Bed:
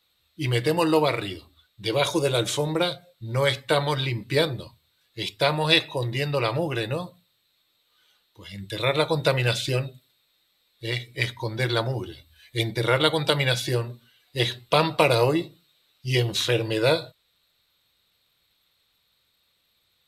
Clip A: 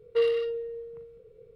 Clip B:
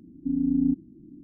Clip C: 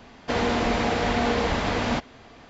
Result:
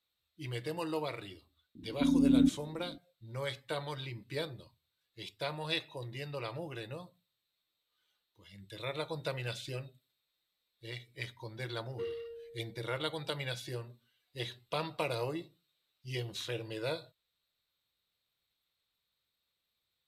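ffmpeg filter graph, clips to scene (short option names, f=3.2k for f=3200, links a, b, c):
-filter_complex "[0:a]volume=-15.5dB[a];[2:a]atrim=end=1.23,asetpts=PTS-STARTPTS,volume=-2dB,afade=t=in:d=0.004:c=hsin,afade=t=out:st=1.226:d=0.004:c=hsin,adelay=1750[b];[1:a]atrim=end=1.55,asetpts=PTS-STARTPTS,volume=-15.5dB,afade=t=in:d=0.004:c=hsin,afade=t=out:st=1.546:d=0.004:c=hsin,adelay=11830[c];[a][b][c]amix=inputs=3:normalize=0"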